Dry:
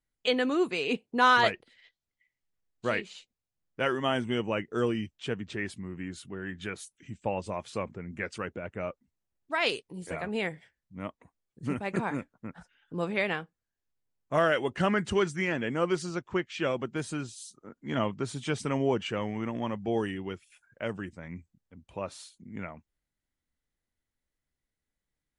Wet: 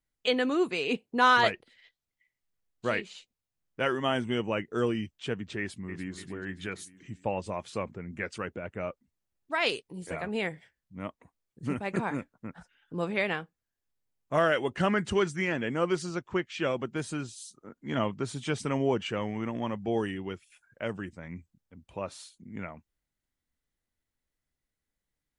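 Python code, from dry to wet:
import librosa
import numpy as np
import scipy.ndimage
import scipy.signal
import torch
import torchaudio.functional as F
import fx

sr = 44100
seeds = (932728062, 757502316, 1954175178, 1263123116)

y = fx.echo_throw(x, sr, start_s=5.59, length_s=0.56, ms=290, feedback_pct=55, wet_db=-10.5)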